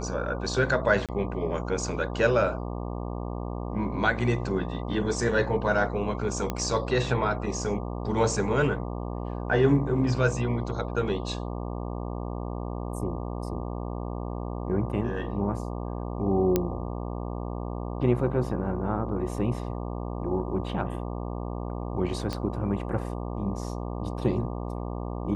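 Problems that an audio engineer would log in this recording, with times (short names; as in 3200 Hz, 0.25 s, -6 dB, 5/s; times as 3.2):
buzz 60 Hz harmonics 20 -33 dBFS
1.06–1.09 gap 27 ms
6.5 pop -14 dBFS
16.56 pop -9 dBFS
22.33 pop -17 dBFS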